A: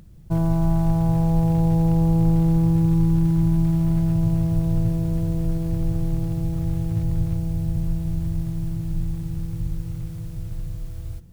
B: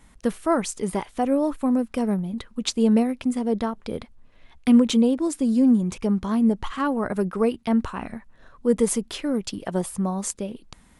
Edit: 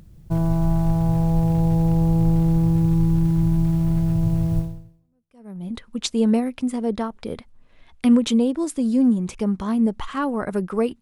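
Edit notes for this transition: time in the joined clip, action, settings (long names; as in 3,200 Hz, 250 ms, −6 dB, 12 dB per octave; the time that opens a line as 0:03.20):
A
0:05.12: continue with B from 0:01.75, crossfade 1.06 s exponential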